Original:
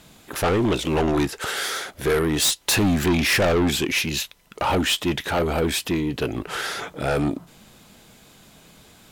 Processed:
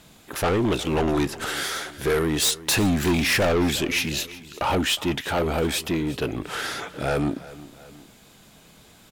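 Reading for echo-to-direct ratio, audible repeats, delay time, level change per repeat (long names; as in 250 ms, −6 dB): −17.0 dB, 2, 361 ms, −6.0 dB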